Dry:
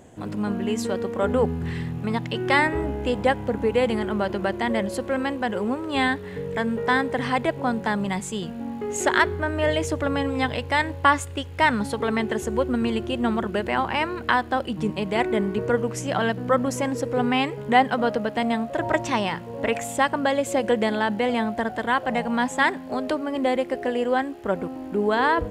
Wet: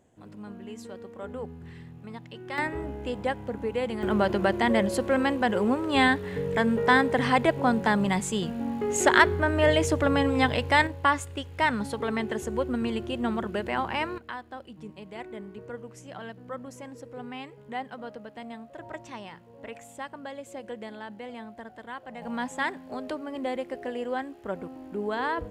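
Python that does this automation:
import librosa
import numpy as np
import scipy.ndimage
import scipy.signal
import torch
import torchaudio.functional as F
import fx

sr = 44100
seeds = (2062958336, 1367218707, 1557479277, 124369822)

y = fx.gain(x, sr, db=fx.steps((0.0, -15.5), (2.58, -8.0), (4.03, 1.0), (10.87, -5.0), (14.18, -17.0), (22.22, -8.5)))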